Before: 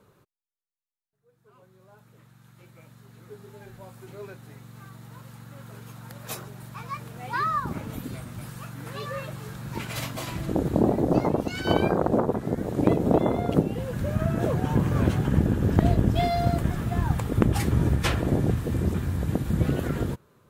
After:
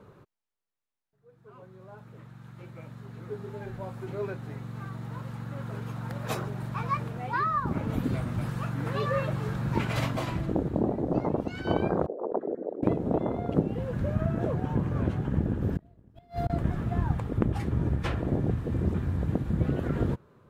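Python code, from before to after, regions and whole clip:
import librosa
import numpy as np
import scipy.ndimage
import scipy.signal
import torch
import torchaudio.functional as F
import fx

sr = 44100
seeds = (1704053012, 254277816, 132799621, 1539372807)

y = fx.chain(x, sr, fx.envelope_sharpen(power=2.0),
    fx.bessel_highpass(hz=560.0, order=4),
    fx.over_compress(threshold_db=-35.0, ratio=-1.0), at=(12.06, 12.83))
y = fx.chain(y, sr, fx.peak_eq(hz=14000.0, db=14.0, octaves=1.0),
    fx.backlash(play_db=-40.0),
    fx.gate_flip(shuts_db=-13.0, range_db=-31), at=(15.61, 16.5))
y = fx.lowpass(y, sr, hz=1600.0, slope=6)
y = fx.rider(y, sr, range_db=10, speed_s=0.5)
y = y * librosa.db_to_amplitude(-2.5)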